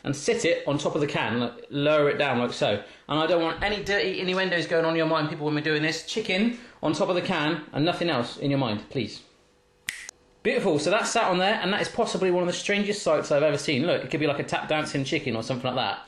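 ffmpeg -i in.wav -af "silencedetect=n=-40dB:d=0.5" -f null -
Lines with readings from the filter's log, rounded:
silence_start: 9.22
silence_end: 9.88 | silence_duration: 0.66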